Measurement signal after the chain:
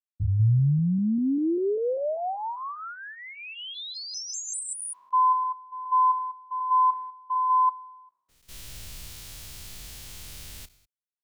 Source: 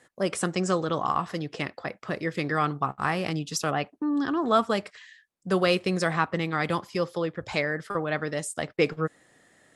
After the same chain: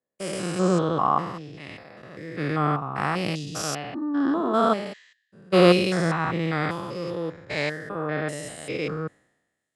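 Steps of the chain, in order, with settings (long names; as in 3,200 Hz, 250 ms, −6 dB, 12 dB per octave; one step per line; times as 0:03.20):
spectrum averaged block by block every 200 ms
multiband upward and downward expander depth 100%
level +5 dB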